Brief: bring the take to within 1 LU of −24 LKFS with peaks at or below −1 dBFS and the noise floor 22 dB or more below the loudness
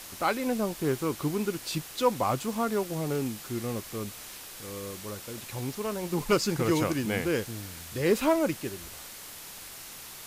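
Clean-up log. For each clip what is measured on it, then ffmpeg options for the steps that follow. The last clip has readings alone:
background noise floor −44 dBFS; target noise floor −52 dBFS; integrated loudness −30.0 LKFS; sample peak −12.0 dBFS; target loudness −24.0 LKFS
→ -af "afftdn=noise_reduction=8:noise_floor=-44"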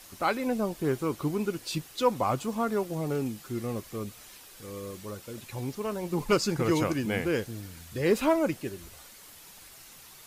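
background noise floor −51 dBFS; target noise floor −52 dBFS
→ -af "afftdn=noise_reduction=6:noise_floor=-51"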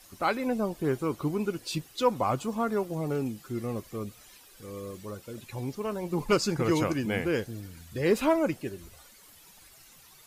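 background noise floor −55 dBFS; integrated loudness −30.0 LKFS; sample peak −12.5 dBFS; target loudness −24.0 LKFS
→ -af "volume=6dB"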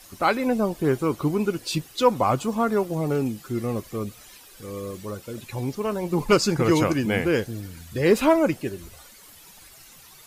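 integrated loudness −24.0 LKFS; sample peak −6.5 dBFS; background noise floor −49 dBFS

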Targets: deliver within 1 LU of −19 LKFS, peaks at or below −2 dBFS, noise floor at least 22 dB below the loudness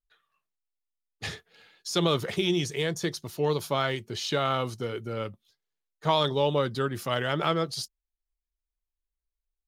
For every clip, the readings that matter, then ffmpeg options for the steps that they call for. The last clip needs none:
integrated loudness −28.5 LKFS; sample peak −10.5 dBFS; target loudness −19.0 LKFS
→ -af "volume=9.5dB,alimiter=limit=-2dB:level=0:latency=1"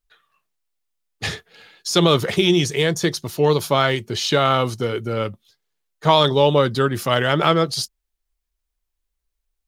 integrated loudness −19.0 LKFS; sample peak −2.0 dBFS; background noise floor −79 dBFS

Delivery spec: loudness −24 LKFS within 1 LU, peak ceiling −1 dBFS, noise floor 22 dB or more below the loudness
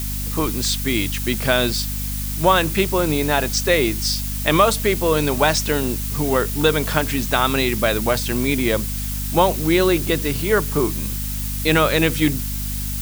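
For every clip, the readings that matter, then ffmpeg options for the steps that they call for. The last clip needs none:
mains hum 50 Hz; hum harmonics up to 250 Hz; level of the hum −24 dBFS; background noise floor −25 dBFS; target noise floor −42 dBFS; integrated loudness −19.5 LKFS; sample peak −1.0 dBFS; target loudness −24.0 LKFS
→ -af "bandreject=frequency=50:width_type=h:width=6,bandreject=frequency=100:width_type=h:width=6,bandreject=frequency=150:width_type=h:width=6,bandreject=frequency=200:width_type=h:width=6,bandreject=frequency=250:width_type=h:width=6"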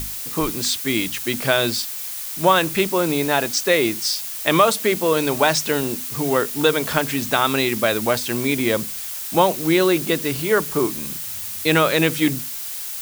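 mains hum none found; background noise floor −30 dBFS; target noise floor −42 dBFS
→ -af "afftdn=noise_reduction=12:noise_floor=-30"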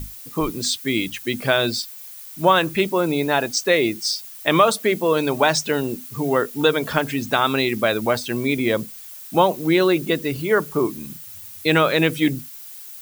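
background noise floor −39 dBFS; target noise floor −43 dBFS
→ -af "afftdn=noise_reduction=6:noise_floor=-39"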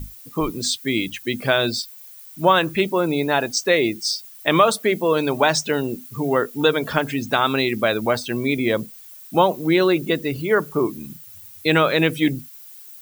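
background noise floor −43 dBFS; integrated loudness −20.5 LKFS; sample peak −2.0 dBFS; target loudness −24.0 LKFS
→ -af "volume=-3.5dB"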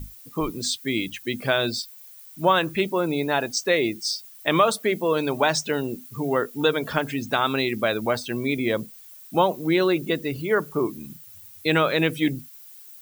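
integrated loudness −24.0 LKFS; sample peak −5.5 dBFS; background noise floor −46 dBFS

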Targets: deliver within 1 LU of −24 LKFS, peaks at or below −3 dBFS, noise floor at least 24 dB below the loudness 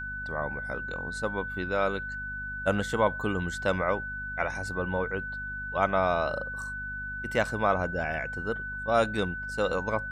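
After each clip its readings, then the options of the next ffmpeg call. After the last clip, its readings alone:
mains hum 50 Hz; hum harmonics up to 250 Hz; level of the hum −41 dBFS; interfering tone 1,500 Hz; level of the tone −34 dBFS; integrated loudness −30.0 LKFS; sample peak −10.0 dBFS; target loudness −24.0 LKFS
→ -af "bandreject=frequency=50:width_type=h:width=4,bandreject=frequency=100:width_type=h:width=4,bandreject=frequency=150:width_type=h:width=4,bandreject=frequency=200:width_type=h:width=4,bandreject=frequency=250:width_type=h:width=4"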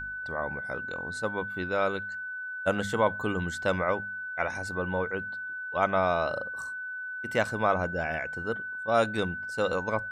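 mains hum none found; interfering tone 1,500 Hz; level of the tone −34 dBFS
→ -af "bandreject=frequency=1500:width=30"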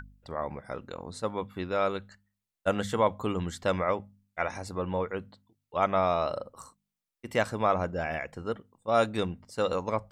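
interfering tone none found; integrated loudness −31.0 LKFS; sample peak −11.0 dBFS; target loudness −24.0 LKFS
→ -af "volume=7dB"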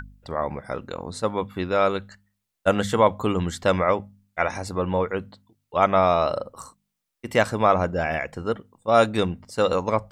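integrated loudness −24.0 LKFS; sample peak −4.0 dBFS; background noise floor −81 dBFS

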